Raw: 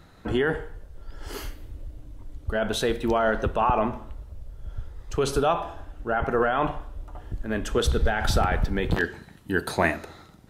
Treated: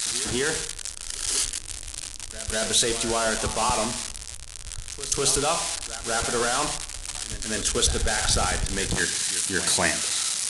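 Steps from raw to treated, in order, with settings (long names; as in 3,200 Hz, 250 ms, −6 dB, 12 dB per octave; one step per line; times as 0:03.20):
spike at every zero crossing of −15 dBFS
high-shelf EQ 2,200 Hz +10 dB
echo ahead of the sound 197 ms −14 dB
on a send at −16.5 dB: convolution reverb RT60 0.40 s, pre-delay 3 ms
on the sum: downsampling to 22,050 Hz
level −4.5 dB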